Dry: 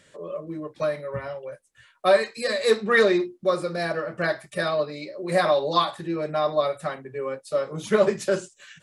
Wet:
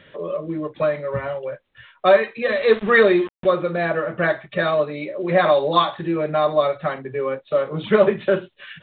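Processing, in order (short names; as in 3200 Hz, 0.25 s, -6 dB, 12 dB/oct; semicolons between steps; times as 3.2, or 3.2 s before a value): in parallel at -2 dB: compressor 8:1, threshold -34 dBFS, peak gain reduction 20.5 dB; 2.44–3.5 on the sum: sample gate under -32 dBFS; gain +3.5 dB; µ-law 64 kbps 8000 Hz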